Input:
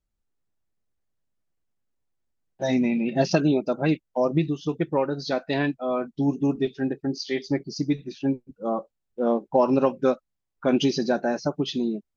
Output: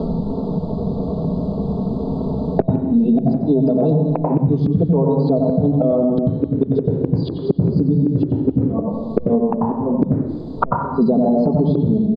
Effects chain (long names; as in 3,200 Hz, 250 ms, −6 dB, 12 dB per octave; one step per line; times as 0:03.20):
elliptic band-stop filter 950–4,200 Hz, stop band 50 dB
bass and treble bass +7 dB, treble −11 dB
mains-hum notches 50/100 Hz
comb filter 4.5 ms, depth 88%
in parallel at +1.5 dB: downward compressor 5 to 1, threshold −25 dBFS, peak gain reduction 13.5 dB
on the sum: gate with flip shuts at −20 dBFS, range −31 dB
soft clipping −25.5 dBFS, distortion −14 dB
gate with flip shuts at −37 dBFS, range −31 dB
high-frequency loss of the air 440 metres
convolution reverb RT60 0.85 s, pre-delay 87 ms, DRR 5 dB
boost into a limiter +35.5 dB
multiband upward and downward compressor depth 100%
level −6.5 dB